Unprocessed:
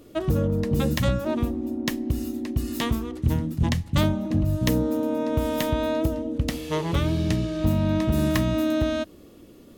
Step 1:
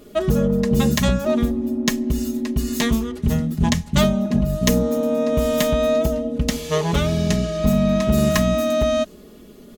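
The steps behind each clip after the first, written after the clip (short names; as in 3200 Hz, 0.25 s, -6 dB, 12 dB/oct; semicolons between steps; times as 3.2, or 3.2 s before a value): dynamic EQ 6600 Hz, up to +6 dB, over -55 dBFS, Q 2.1; comb 4.8 ms, depth 83%; gain +3.5 dB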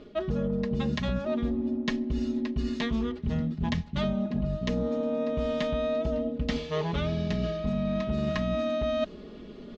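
LPF 4400 Hz 24 dB/oct; reverse; compressor 6:1, threshold -26 dBFS, peak gain reduction 13.5 dB; reverse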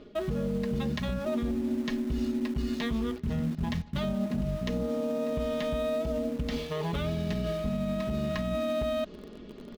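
in parallel at -11.5 dB: bit-crush 6-bit; on the sum: limiter -21 dBFS, peak gain reduction 8 dB; gain -1.5 dB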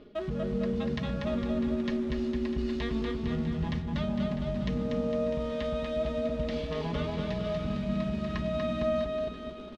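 LPF 5000 Hz 12 dB/oct; on a send: bouncing-ball echo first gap 0.24 s, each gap 0.9×, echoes 5; on the sum: gain -2.5 dB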